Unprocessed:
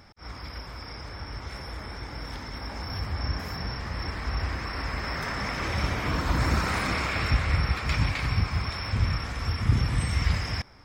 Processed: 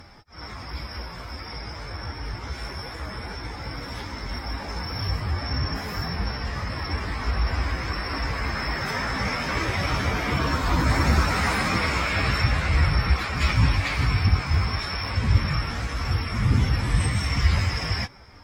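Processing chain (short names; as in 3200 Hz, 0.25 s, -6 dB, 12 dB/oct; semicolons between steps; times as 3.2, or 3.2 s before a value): added harmonics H 5 -34 dB, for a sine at -9.5 dBFS; plain phase-vocoder stretch 1.7×; gain +6 dB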